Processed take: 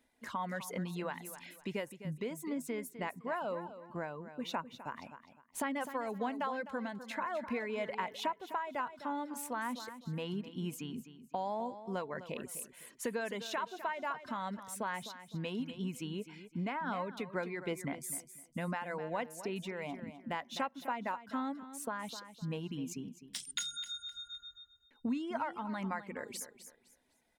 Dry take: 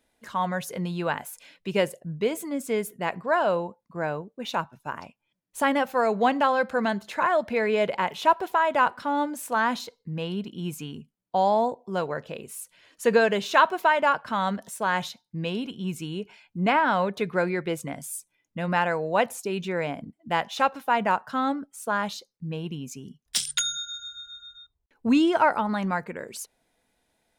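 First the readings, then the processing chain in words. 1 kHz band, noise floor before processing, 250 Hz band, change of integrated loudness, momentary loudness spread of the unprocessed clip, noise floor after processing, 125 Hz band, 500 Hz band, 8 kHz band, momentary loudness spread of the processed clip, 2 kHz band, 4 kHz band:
−14.5 dB, −76 dBFS, −10.5 dB, −13.5 dB, 16 LU, −68 dBFS, −9.0 dB, −14.5 dB, −9.5 dB, 7 LU, −14.0 dB, −11.0 dB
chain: reverb reduction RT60 0.53 s
thirty-one-band graphic EQ 250 Hz +8 dB, 1,000 Hz +4 dB, 2,000 Hz +5 dB
downward compressor 4 to 1, threshold −32 dBFS, peak gain reduction 18 dB
repeating echo 255 ms, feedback 27%, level −12.5 dB
amplitude modulation by smooth noise, depth 55%
level −2 dB

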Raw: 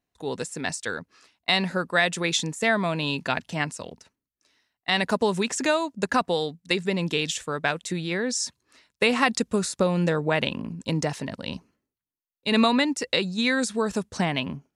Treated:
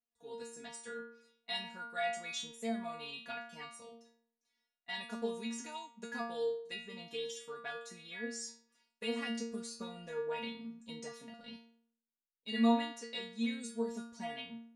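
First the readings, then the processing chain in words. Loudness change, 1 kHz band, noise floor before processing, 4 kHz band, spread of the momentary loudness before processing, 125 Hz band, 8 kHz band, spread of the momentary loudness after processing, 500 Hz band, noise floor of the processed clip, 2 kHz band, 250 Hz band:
−14.5 dB, −14.5 dB, below −85 dBFS, −15.5 dB, 10 LU, −24.5 dB, −15.5 dB, 12 LU, −14.0 dB, below −85 dBFS, −17.0 dB, −12.0 dB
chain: stiff-string resonator 230 Hz, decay 0.61 s, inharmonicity 0.002

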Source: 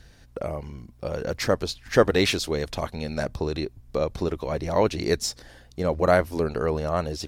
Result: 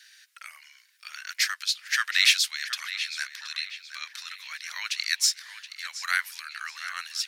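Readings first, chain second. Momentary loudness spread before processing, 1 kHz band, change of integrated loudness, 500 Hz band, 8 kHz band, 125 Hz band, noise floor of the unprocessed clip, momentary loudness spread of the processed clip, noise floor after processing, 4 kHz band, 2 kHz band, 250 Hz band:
13 LU, −10.0 dB, −1.0 dB, below −40 dB, +6.5 dB, below −40 dB, −53 dBFS, 20 LU, −60 dBFS, +6.5 dB, +5.0 dB, below −40 dB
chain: Butterworth high-pass 1,600 Hz 36 dB per octave
on a send: feedback echo with a low-pass in the loop 723 ms, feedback 46%, low-pass 4,900 Hz, level −11.5 dB
on the sum: level +6.5 dB

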